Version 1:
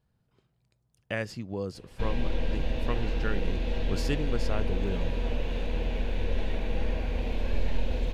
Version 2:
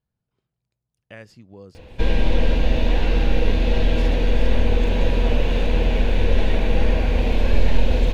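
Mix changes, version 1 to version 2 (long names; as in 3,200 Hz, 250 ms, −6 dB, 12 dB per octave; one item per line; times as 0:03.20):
speech −9.0 dB
background +11.0 dB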